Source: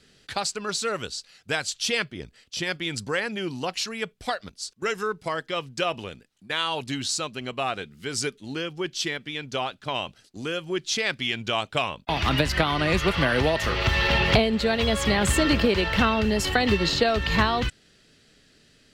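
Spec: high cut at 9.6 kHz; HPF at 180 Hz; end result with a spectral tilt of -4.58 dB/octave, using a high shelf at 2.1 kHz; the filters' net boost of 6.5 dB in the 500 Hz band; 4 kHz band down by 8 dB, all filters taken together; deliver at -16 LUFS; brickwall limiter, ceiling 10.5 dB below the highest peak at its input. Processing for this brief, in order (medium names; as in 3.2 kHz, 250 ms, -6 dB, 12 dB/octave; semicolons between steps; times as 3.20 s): high-pass 180 Hz; low-pass 9.6 kHz; peaking EQ 500 Hz +8.5 dB; treble shelf 2.1 kHz -4 dB; peaking EQ 4 kHz -7 dB; trim +10 dB; peak limiter -4 dBFS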